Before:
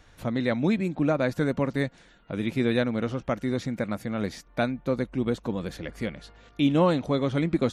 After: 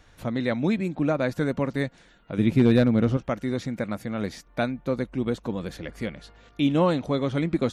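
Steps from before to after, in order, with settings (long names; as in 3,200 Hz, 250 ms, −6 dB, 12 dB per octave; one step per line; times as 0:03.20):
0:02.38–0:03.17: low-shelf EQ 370 Hz +10.5 dB
hard clipping −10.5 dBFS, distortion −26 dB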